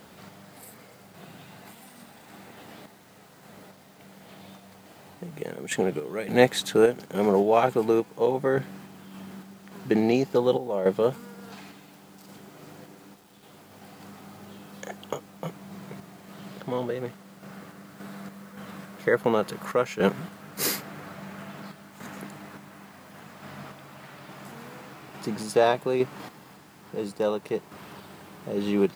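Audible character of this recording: random-step tremolo, depth 70%; a quantiser's noise floor 10-bit, dither none

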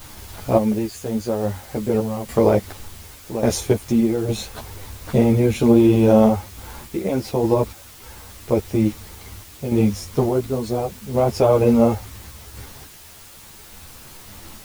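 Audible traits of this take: random-step tremolo, depth 80%; a quantiser's noise floor 8-bit, dither triangular; a shimmering, thickened sound

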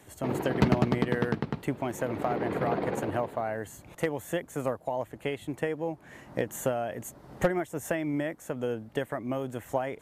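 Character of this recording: noise floor -54 dBFS; spectral tilt -4.5 dB/oct

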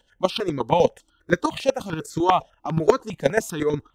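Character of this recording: chopped level 8.3 Hz, depth 65%, duty 10%; notches that jump at a steady rate 10 Hz 330–2800 Hz

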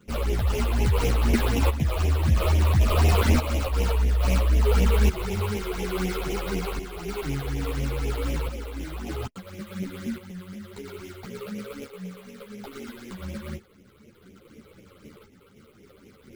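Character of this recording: aliases and images of a low sample rate 1800 Hz, jitter 20%; phasing stages 8, 4 Hz, lowest notch 200–1400 Hz; tremolo saw up 0.59 Hz, depth 60%; a shimmering, thickened sound

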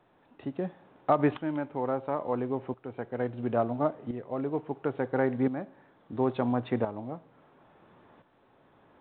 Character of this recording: tremolo saw up 0.73 Hz, depth 70%; µ-law

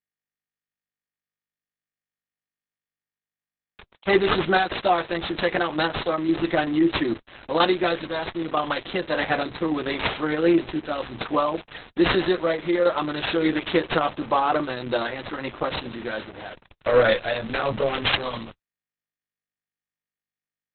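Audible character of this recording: aliases and images of a low sample rate 7700 Hz, jitter 0%; random-step tremolo; a quantiser's noise floor 8-bit, dither none; Opus

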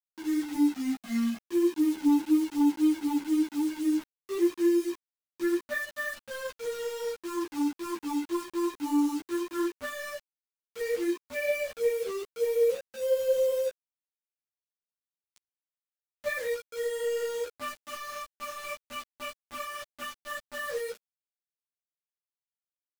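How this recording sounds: phasing stages 8, 0.093 Hz, lowest notch 550–1600 Hz; a quantiser's noise floor 8-bit, dither none; a shimmering, thickened sound

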